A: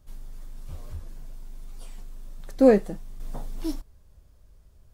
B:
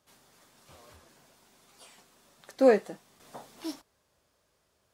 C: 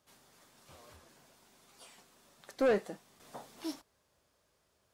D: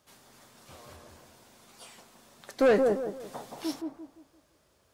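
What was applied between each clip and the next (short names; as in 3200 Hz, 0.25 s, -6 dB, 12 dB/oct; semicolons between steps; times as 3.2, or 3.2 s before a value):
weighting filter A
soft clip -21 dBFS, distortion -9 dB; gain -2 dB
dark delay 0.172 s, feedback 34%, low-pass 980 Hz, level -3 dB; gain +6 dB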